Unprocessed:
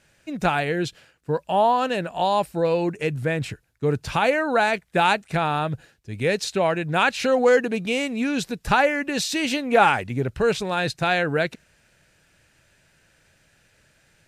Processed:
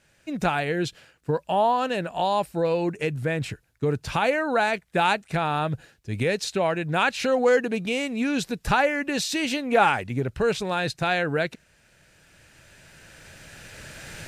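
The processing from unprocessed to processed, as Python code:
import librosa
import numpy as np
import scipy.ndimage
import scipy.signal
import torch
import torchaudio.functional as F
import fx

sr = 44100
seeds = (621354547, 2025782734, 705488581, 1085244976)

y = fx.recorder_agc(x, sr, target_db=-13.5, rise_db_per_s=8.6, max_gain_db=30)
y = y * librosa.db_to_amplitude(-2.5)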